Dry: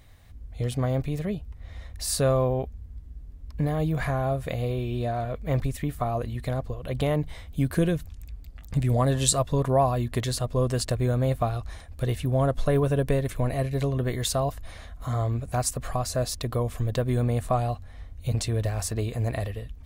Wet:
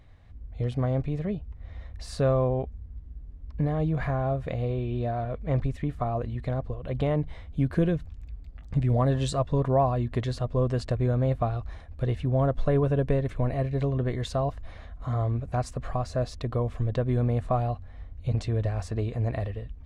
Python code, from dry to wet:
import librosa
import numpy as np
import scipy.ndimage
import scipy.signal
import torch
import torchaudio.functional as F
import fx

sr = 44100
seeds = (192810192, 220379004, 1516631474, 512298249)

y = fx.spacing_loss(x, sr, db_at_10k=22)